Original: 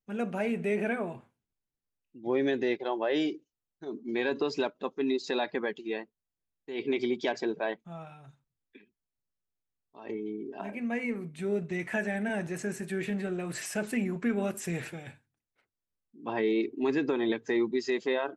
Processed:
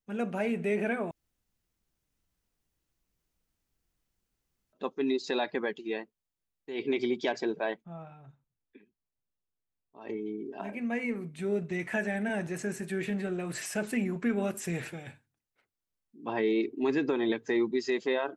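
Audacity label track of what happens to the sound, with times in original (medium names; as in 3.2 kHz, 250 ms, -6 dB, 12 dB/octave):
1.110000	4.730000	room tone
7.820000	10.010000	low-pass 1.2 kHz 6 dB/octave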